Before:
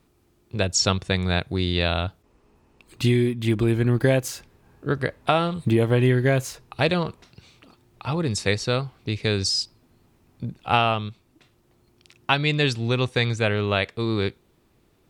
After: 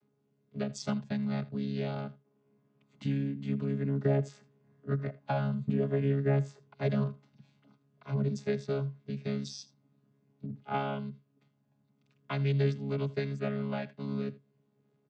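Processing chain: chord vocoder bare fifth, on C#3; echo 80 ms -19.5 dB; gain -8.5 dB

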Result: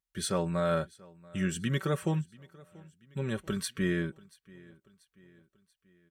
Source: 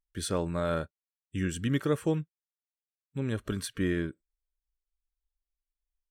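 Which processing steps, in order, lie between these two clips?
HPF 58 Hz; bell 310 Hz -4.5 dB 0.82 oct; comb 5.3 ms, depth 58%; feedback echo 0.685 s, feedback 49%, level -23.5 dB

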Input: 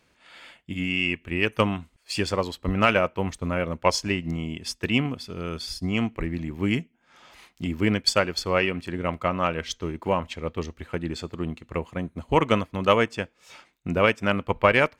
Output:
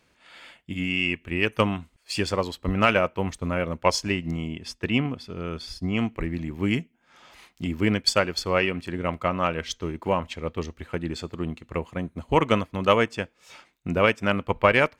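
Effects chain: 4.48–5.99 high shelf 5100 Hz -10 dB

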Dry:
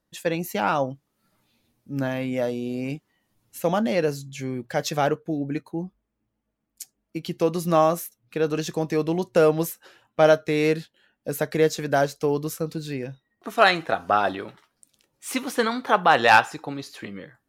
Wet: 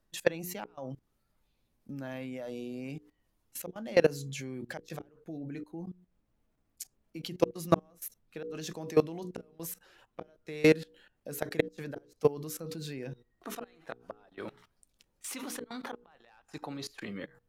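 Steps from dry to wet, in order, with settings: flipped gate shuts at -11 dBFS, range -35 dB; HPF 97 Hz 12 dB/oct; notches 60/120/180/240/300/360/420/480 Hz; level quantiser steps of 21 dB; added noise brown -77 dBFS; gain +2.5 dB

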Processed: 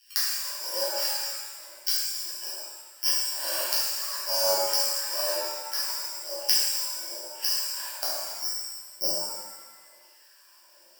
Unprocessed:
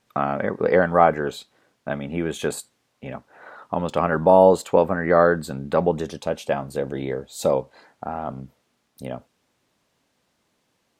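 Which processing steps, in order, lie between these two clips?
Wiener smoothing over 9 samples; high shelf 4100 Hz +4.5 dB; in parallel at -5 dB: one-sided clip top -18 dBFS; on the sum: careless resampling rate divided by 8×, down filtered, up zero stuff; half-wave rectifier; ripple EQ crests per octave 1.3, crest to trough 15 dB; LFO high-pass saw down 1.1 Hz 430–2600 Hz; flipped gate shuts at -6 dBFS, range -26 dB; shimmer reverb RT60 1.3 s, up +7 st, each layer -8 dB, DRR -10 dB; gain -5.5 dB

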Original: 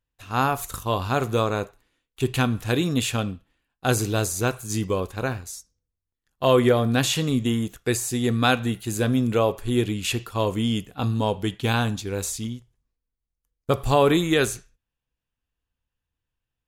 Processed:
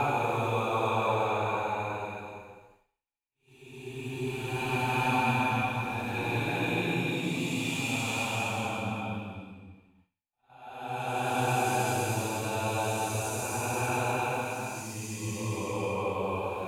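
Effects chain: small resonant body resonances 870/2400 Hz, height 18 dB, ringing for 25 ms; Paulstretch 4.3×, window 0.50 s, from 1.2; expander -49 dBFS; gain -9 dB

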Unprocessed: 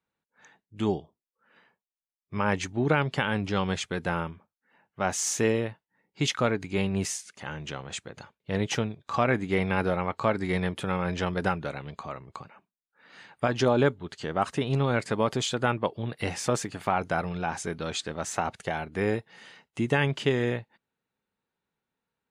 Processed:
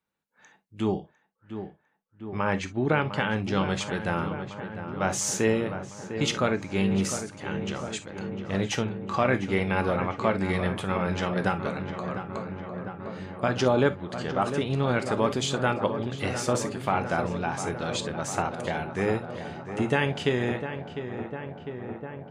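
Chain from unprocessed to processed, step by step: 0.82–3.36 high shelf 4100 Hz -> 6600 Hz -9.5 dB; darkening echo 0.702 s, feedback 80%, low-pass 2200 Hz, level -9.5 dB; non-linear reverb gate 80 ms flat, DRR 10 dB

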